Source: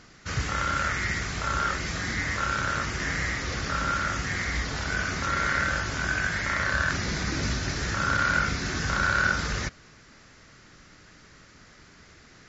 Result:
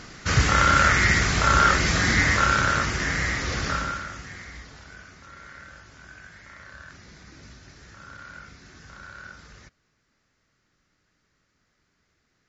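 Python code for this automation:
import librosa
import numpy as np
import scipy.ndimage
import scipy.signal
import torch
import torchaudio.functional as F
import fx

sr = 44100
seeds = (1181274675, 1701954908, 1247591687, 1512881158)

y = fx.gain(x, sr, db=fx.line((2.21, 9.0), (3.09, 3.0), (3.71, 3.0), (4.07, -8.0), (5.17, -19.0)))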